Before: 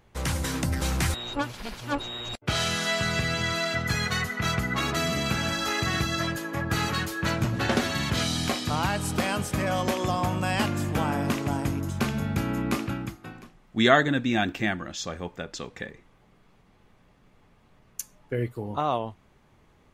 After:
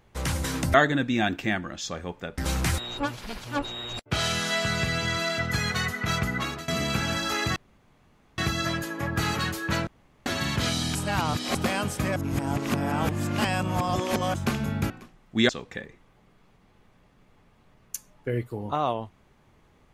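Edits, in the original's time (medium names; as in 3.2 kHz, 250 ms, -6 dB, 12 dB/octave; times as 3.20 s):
4.70–5.04 s: fade out, to -19.5 dB
5.92 s: insert room tone 0.82 s
7.41–7.80 s: room tone
8.49–9.09 s: reverse
9.70–11.88 s: reverse
12.44–13.31 s: delete
13.90–15.54 s: move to 0.74 s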